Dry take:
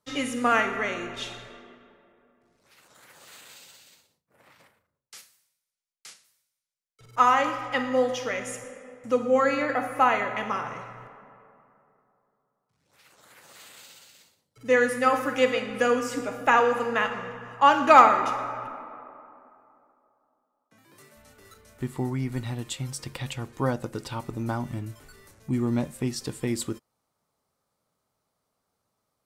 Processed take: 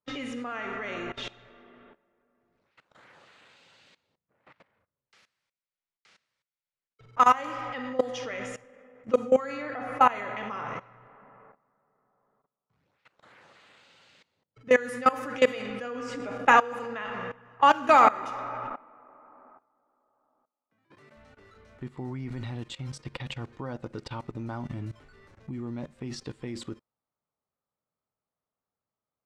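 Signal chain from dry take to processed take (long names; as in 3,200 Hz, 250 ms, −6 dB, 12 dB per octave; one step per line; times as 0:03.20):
output level in coarse steps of 19 dB
low-pass that shuts in the quiet parts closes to 2,800 Hz, open at −23 dBFS
level +3 dB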